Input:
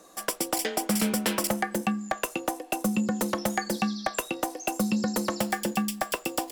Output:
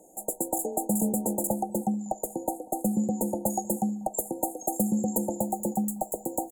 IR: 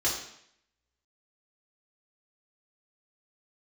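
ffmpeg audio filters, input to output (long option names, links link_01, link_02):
-filter_complex "[0:a]asettb=1/sr,asplit=3[link_01][link_02][link_03];[link_01]atrim=end=3.464[link_04];[link_02]atrim=start=3.46:end=5.18,asetpts=PTS-STARTPTS,afade=type=in:duration=0.004:curve=qsin,afade=type=out:start_time=1.716:duration=0.004:curve=qsin,highshelf=frequency=6300:gain=6.5[link_05];[link_03]atrim=start=5.176[link_06];[link_04][link_05]acrossfade=duration=0.004:curve1=hsin:curve2=qsin[link_07];[link_07][link_06]acrossfade=duration=0.004:curve1=qsin:curve2=hsin,afftfilt=real='re*(1-between(b*sr/4096,930,6500))':imag='im*(1-between(b*sr/4096,930,6500))':win_size=4096:overlap=0.75,asplit=2[link_08][link_09];[link_09]adelay=192,lowpass=frequency=1000:poles=1,volume=-22dB,asplit=2[link_10][link_11];[link_11]adelay=192,lowpass=frequency=1000:poles=1,volume=0.54,asplit=2[link_12][link_13];[link_13]adelay=192,lowpass=frequency=1000:poles=1,volume=0.54,asplit=2[link_14][link_15];[link_15]adelay=192,lowpass=frequency=1000:poles=1,volume=0.54[link_16];[link_10][link_12][link_14][link_16]amix=inputs=4:normalize=0[link_17];[link_08][link_17]amix=inputs=2:normalize=0"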